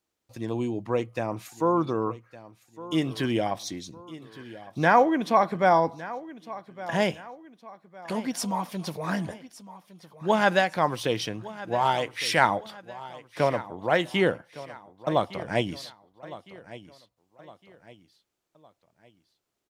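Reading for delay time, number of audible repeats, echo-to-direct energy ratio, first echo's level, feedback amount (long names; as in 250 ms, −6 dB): 1,160 ms, 3, −16.0 dB, −17.0 dB, 41%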